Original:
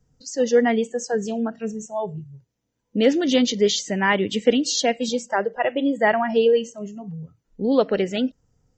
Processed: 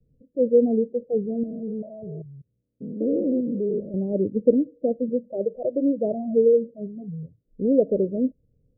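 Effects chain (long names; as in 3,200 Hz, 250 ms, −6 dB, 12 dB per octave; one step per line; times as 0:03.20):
0:01.43–0:03.94: spectrum averaged block by block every 200 ms
Butterworth low-pass 610 Hz 72 dB per octave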